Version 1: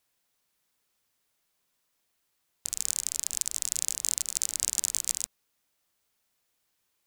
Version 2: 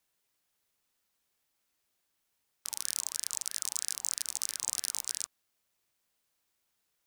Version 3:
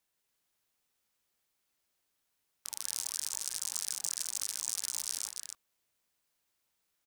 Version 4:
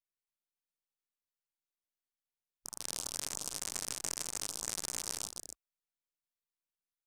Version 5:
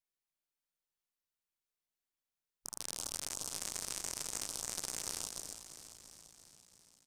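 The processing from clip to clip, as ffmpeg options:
-af "volume=3.35,asoftclip=hard,volume=0.299,aeval=exprs='val(0)*sin(2*PI*1300*n/s+1300*0.35/3.1*sin(2*PI*3.1*n/s))':c=same"
-af "aecho=1:1:157.4|285.7:0.447|0.562,volume=0.708"
-af "aeval=exprs='if(lt(val(0),0),0.447*val(0),val(0))':c=same,afwtdn=0.00355"
-filter_complex "[0:a]alimiter=limit=0.133:level=0:latency=1:release=61,asplit=9[s0][s1][s2][s3][s4][s5][s6][s7][s8];[s1]adelay=340,afreqshift=-45,volume=0.282[s9];[s2]adelay=680,afreqshift=-90,volume=0.178[s10];[s3]adelay=1020,afreqshift=-135,volume=0.112[s11];[s4]adelay=1360,afreqshift=-180,volume=0.0708[s12];[s5]adelay=1700,afreqshift=-225,volume=0.0442[s13];[s6]adelay=2040,afreqshift=-270,volume=0.0279[s14];[s7]adelay=2380,afreqshift=-315,volume=0.0176[s15];[s8]adelay=2720,afreqshift=-360,volume=0.0111[s16];[s0][s9][s10][s11][s12][s13][s14][s15][s16]amix=inputs=9:normalize=0"

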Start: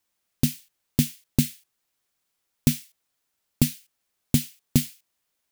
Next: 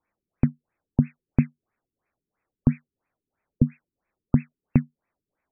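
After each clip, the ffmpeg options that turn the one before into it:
-filter_complex "[0:a]asplit=2[s0][s1];[s1]acompressor=threshold=0.0398:ratio=6,volume=0.794[s2];[s0][s2]amix=inputs=2:normalize=0,afftfilt=real='re*lt(b*sr/1024,410*pow(2700/410,0.5+0.5*sin(2*PI*3*pts/sr)))':imag='im*lt(b*sr/1024,410*pow(2700/410,0.5+0.5*sin(2*PI*3*pts/sr)))':win_size=1024:overlap=0.75"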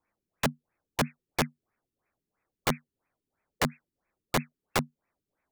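-af "aeval=exprs='(mod(7.94*val(0)+1,2)-1)/7.94':c=same"

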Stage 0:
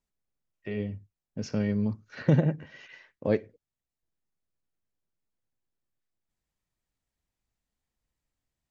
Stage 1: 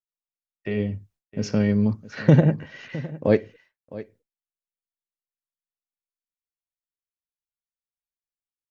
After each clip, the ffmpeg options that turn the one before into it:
-af "aecho=1:1:660:0.141,agate=range=0.0224:threshold=0.00141:ratio=3:detection=peak,volume=2.24"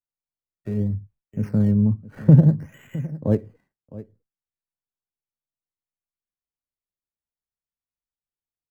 -filter_complex "[0:a]bass=f=250:g=13,treble=f=4000:g=-8,acrossover=split=230|1700[s0][s1][s2];[s2]acrusher=samples=17:mix=1:aa=0.000001:lfo=1:lforange=17:lforate=0.61[s3];[s0][s1][s3]amix=inputs=3:normalize=0,volume=0.447"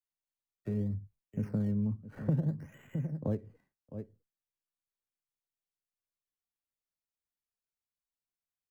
-filter_complex "[0:a]acrossover=split=190|1400[s0][s1][s2];[s0]acompressor=threshold=0.0355:ratio=4[s3];[s1]acompressor=threshold=0.0316:ratio=4[s4];[s2]acompressor=threshold=0.00141:ratio=4[s5];[s3][s4][s5]amix=inputs=3:normalize=0,volume=0.562"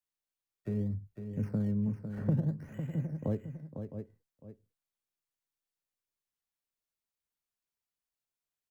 -af "aecho=1:1:503:0.376"

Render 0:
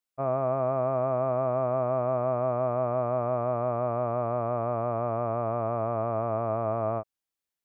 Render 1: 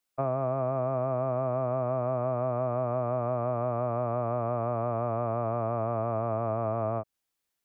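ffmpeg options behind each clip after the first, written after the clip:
-filter_complex "[0:a]acrossover=split=230|520[s0][s1][s2];[s0]acompressor=threshold=0.00891:ratio=4[s3];[s1]acompressor=threshold=0.00708:ratio=4[s4];[s2]acompressor=threshold=0.0126:ratio=4[s5];[s3][s4][s5]amix=inputs=3:normalize=0,volume=2"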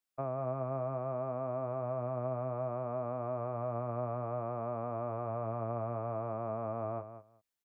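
-af "aecho=1:1:191|382:0.282|0.0423,volume=0.422"

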